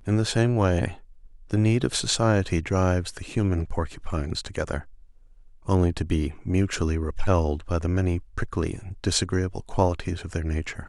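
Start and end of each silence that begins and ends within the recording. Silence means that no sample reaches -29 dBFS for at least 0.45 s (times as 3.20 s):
0.92–1.51 s
4.79–5.68 s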